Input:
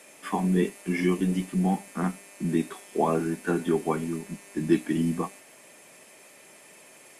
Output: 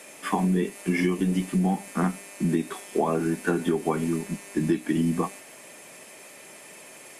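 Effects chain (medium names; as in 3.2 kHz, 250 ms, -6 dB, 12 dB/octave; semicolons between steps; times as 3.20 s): compression 12:1, threshold -25 dBFS, peak gain reduction 10.5 dB; trim +5.5 dB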